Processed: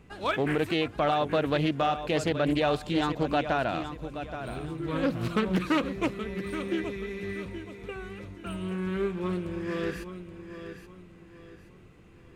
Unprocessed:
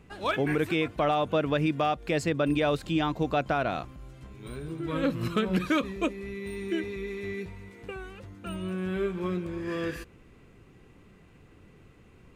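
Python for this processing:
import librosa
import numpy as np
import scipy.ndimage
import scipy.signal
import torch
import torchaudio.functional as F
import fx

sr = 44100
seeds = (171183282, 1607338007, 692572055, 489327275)

y = fx.echo_feedback(x, sr, ms=825, feedback_pct=34, wet_db=-10.5)
y = fx.doppler_dist(y, sr, depth_ms=0.32)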